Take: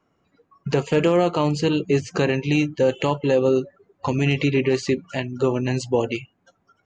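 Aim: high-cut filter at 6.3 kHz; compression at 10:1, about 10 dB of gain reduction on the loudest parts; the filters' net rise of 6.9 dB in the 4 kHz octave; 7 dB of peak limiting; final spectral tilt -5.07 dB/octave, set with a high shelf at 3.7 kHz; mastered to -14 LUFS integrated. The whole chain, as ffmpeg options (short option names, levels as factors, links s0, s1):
-af "lowpass=6300,highshelf=f=3700:g=8,equalizer=f=4000:t=o:g=5,acompressor=threshold=0.0631:ratio=10,volume=6.68,alimiter=limit=0.794:level=0:latency=1"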